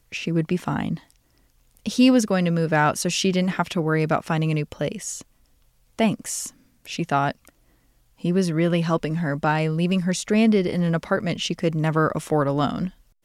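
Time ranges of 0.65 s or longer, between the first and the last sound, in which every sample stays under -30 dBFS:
0.97–1.86 s
5.21–5.99 s
7.48–8.24 s

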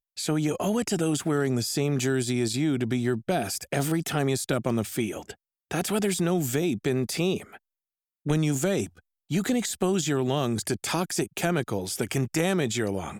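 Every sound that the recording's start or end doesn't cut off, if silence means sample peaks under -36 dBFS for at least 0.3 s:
5.71–7.56 s
8.26–8.86 s

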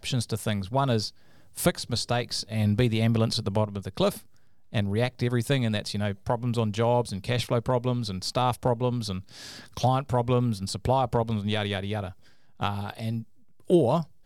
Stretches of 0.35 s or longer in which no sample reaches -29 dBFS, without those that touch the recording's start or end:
1.08–1.58 s
4.17–4.75 s
9.19–9.77 s
12.08–12.62 s
13.20–13.70 s

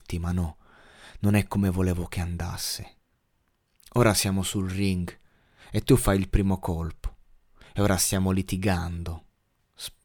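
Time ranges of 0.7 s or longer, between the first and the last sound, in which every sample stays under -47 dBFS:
2.92–3.80 s

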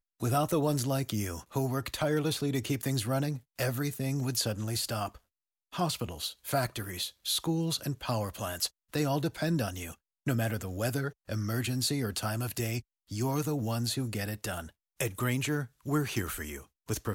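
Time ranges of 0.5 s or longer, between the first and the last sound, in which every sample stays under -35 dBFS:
5.08–5.74 s

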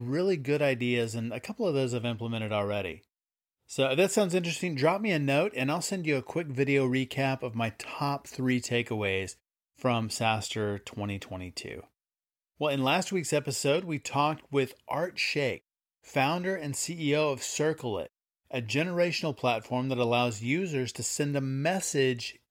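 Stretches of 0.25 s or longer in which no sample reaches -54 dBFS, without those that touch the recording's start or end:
3.03–3.69 s
9.35–9.78 s
11.87–12.60 s
15.58–16.04 s
18.08–18.51 s

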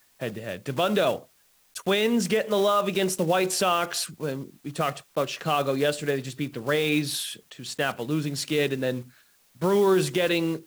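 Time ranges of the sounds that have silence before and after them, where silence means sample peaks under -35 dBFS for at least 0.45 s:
1.76–9.02 s

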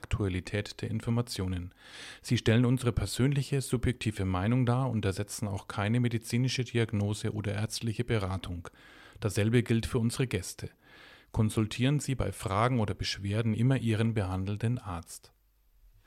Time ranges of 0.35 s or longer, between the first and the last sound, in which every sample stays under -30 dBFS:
1.59–2.27 s
8.67–9.22 s
10.65–11.34 s

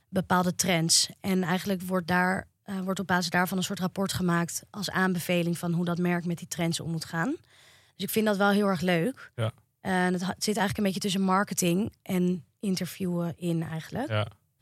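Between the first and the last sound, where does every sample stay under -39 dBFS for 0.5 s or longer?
7.35–8.00 s

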